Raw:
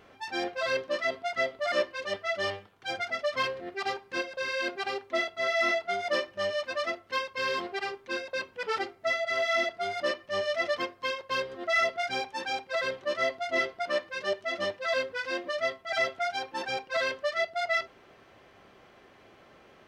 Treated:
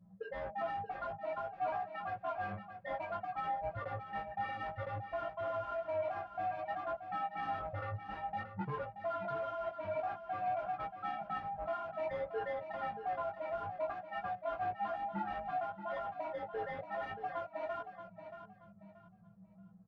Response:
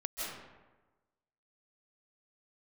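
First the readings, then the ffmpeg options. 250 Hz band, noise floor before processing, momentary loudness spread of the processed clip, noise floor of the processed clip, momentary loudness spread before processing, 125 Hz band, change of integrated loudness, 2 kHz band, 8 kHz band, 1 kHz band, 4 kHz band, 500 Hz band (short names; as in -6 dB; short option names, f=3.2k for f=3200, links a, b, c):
-8.0 dB, -57 dBFS, 5 LU, -59 dBFS, 7 LU, +5.5 dB, -9.5 dB, -17.0 dB, under -30 dB, -3.0 dB, -24.5 dB, -9.0 dB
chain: -filter_complex "[0:a]afftfilt=real='real(if(between(b,1,1008),(2*floor((b-1)/24)+1)*24-b,b),0)':imag='imag(if(between(b,1,1008),(2*floor((b-1)/24)+1)*24-b,b),0)*if(between(b,1,1008),-1,1)':win_size=2048:overlap=0.75,anlmdn=2.51,aemphasis=mode=reproduction:type=75fm,asplit=2[a][b];[b]aeval=exprs='0.0237*(abs(mod(val(0)/0.0237+3,4)-2)-1)':c=same,volume=-3dB[c];[a][c]amix=inputs=2:normalize=0,firequalizer=gain_entry='entry(110,0);entry(160,-18);entry(300,-3);entry(430,2)':delay=0.05:min_phase=1,acompressor=threshold=-40dB:ratio=4,alimiter=level_in=12.5dB:limit=-24dB:level=0:latency=1:release=99,volume=-12.5dB,afreqshift=-220,lowpass=1.3k,asoftclip=type=tanh:threshold=-34.5dB,flanger=delay=16:depth=3.7:speed=0.56,asplit=2[d][e];[e]aecho=0:1:629|1258|1887:0.316|0.0885|0.0248[f];[d][f]amix=inputs=2:normalize=0,volume=9.5dB"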